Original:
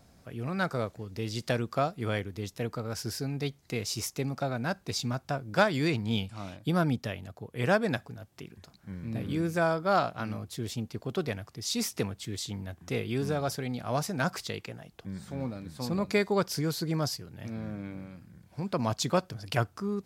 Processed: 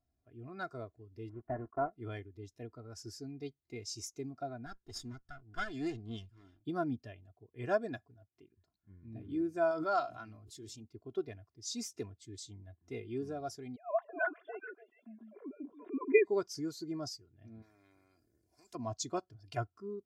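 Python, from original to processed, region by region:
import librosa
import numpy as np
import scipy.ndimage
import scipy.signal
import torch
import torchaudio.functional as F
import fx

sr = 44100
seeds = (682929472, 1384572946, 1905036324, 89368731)

y = fx.chain(x, sr, fx.block_float(bits=3),
    fx.lowpass(hz=1600.0, slope=24),
    fx.doppler_dist(depth_ms=0.4), at=(1.29, 1.93))
y = fx.chain(y, sr, fx.lower_of_two(delay_ms=0.6),
    fx.notch(hz=550.0, q=6.6), at=(4.66, 6.61))
y = fx.chain(y, sr, fx.tilt_shelf(db=-3.0, hz=1300.0),
    fx.hum_notches(base_hz=60, count=7),
    fx.pre_swell(db_per_s=27.0), at=(9.71, 10.84))
y = fx.chain(y, sr, fx.sine_speech(),
    fx.dynamic_eq(hz=1500.0, q=1.5, threshold_db=-43.0, ratio=4.0, max_db=5),
    fx.echo_stepped(ms=142, hz=290.0, octaves=1.4, feedback_pct=70, wet_db=-0.5), at=(13.76, 16.25))
y = fx.chain(y, sr, fx.band_shelf(hz=1700.0, db=-11.0, octaves=2.6),
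    fx.spectral_comp(ratio=4.0), at=(17.62, 18.75))
y = y + 0.6 * np.pad(y, (int(2.9 * sr / 1000.0), 0))[:len(y)]
y = fx.dynamic_eq(y, sr, hz=6800.0, q=1.5, threshold_db=-51.0, ratio=4.0, max_db=7)
y = fx.spectral_expand(y, sr, expansion=1.5)
y = y * 10.0 ** (-4.5 / 20.0)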